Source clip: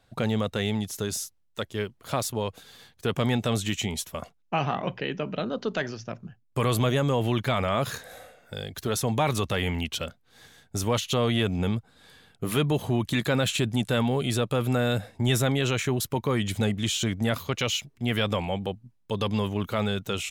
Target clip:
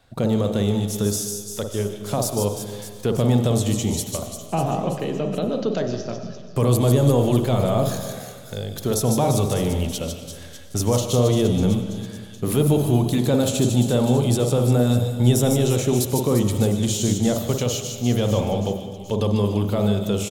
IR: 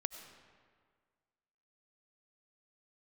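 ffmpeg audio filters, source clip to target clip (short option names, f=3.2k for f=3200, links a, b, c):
-filter_complex "[0:a]acrossover=split=880|4200[a][b][c];[a]asplit=2[d][e];[e]adelay=49,volume=-4dB[f];[d][f]amix=inputs=2:normalize=0[g];[b]acompressor=threshold=-48dB:ratio=10[h];[c]aecho=1:1:150|345|598.5|928|1356:0.631|0.398|0.251|0.158|0.1[i];[g][h][i]amix=inputs=3:normalize=0[j];[1:a]atrim=start_sample=2205[k];[j][k]afir=irnorm=-1:irlink=0,volume=6.5dB"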